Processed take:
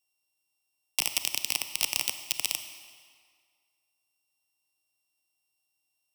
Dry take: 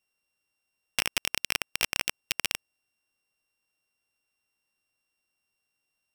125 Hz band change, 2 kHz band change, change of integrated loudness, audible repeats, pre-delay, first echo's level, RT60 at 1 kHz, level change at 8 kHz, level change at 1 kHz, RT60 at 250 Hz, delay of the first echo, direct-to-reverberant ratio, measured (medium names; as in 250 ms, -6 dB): -7.0 dB, -4.5 dB, +1.0 dB, no echo, 28 ms, no echo, 2.0 s, +3.5 dB, -4.0 dB, 1.8 s, no echo, 8.5 dB